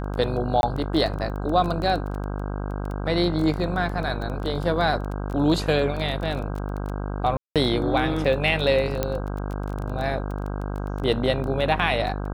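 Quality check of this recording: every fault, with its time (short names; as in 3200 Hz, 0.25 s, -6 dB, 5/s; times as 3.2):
buzz 50 Hz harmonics 32 -29 dBFS
crackle 16/s -28 dBFS
0.61–0.63 gap 21 ms
7.37–7.56 gap 0.187 s
9.03 pop -9 dBFS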